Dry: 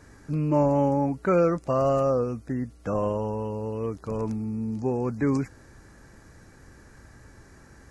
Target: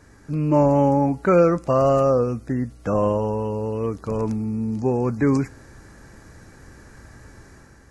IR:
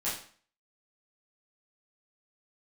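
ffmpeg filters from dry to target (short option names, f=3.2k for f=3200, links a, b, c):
-filter_complex "[0:a]dynaudnorm=f=110:g=7:m=5dB,asplit=2[a][b];[1:a]atrim=start_sample=2205[c];[b][c]afir=irnorm=-1:irlink=0,volume=-25.5dB[d];[a][d]amix=inputs=2:normalize=0"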